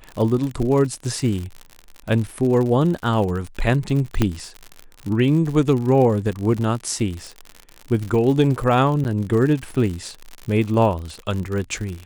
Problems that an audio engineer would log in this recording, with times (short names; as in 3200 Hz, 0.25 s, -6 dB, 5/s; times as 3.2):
crackle 79/s -26 dBFS
4.22 pop -5 dBFS
9.04–9.05 gap 9.9 ms